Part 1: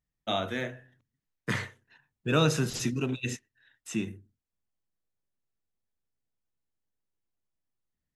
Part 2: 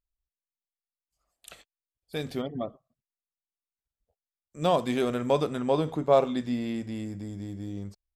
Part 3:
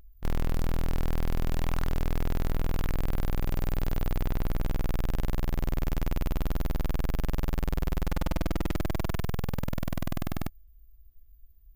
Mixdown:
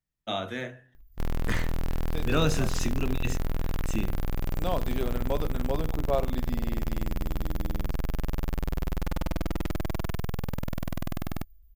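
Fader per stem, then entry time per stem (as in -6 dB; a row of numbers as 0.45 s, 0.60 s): -1.5 dB, -7.0 dB, -1.0 dB; 0.00 s, 0.00 s, 0.95 s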